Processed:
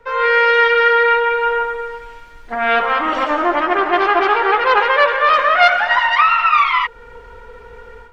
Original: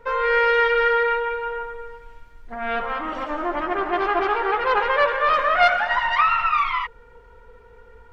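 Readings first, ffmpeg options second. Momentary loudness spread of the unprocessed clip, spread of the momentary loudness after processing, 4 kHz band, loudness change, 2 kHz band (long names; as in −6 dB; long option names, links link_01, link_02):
13 LU, 9 LU, +8.5 dB, +6.5 dB, +7.5 dB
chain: -filter_complex "[0:a]highshelf=frequency=2800:gain=10,acrossover=split=220|340|2400[link_01][link_02][link_03][link_04];[link_01]acompressor=threshold=-48dB:ratio=6[link_05];[link_04]lowpass=frequency=3600:poles=1[link_06];[link_05][link_02][link_03][link_06]amix=inputs=4:normalize=0,dynaudnorm=framelen=110:gausssize=3:maxgain=11.5dB,volume=-1dB"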